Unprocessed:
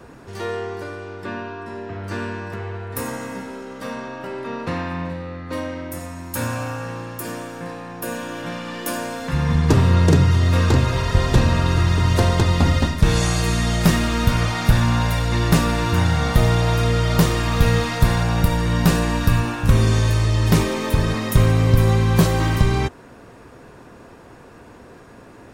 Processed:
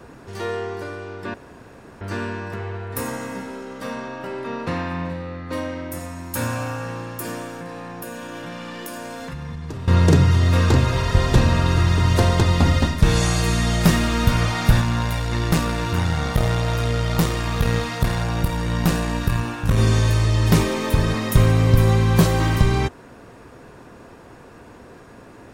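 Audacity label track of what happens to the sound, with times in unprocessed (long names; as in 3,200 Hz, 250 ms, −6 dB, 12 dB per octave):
1.340000	2.010000	fill with room tone
7.540000	9.880000	downward compressor, threshold −29 dBFS
14.810000	19.780000	tube saturation drive 7 dB, bias 0.65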